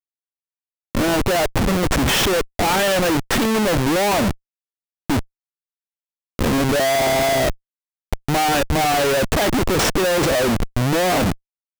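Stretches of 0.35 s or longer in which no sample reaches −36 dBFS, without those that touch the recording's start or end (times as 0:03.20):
0:04.34–0:05.10
0:05.23–0:06.39
0:07.54–0:08.13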